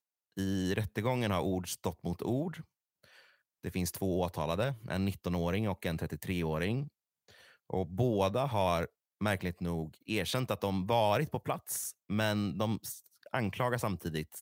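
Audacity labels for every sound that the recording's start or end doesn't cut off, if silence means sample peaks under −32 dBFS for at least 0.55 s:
3.650000	6.830000	sound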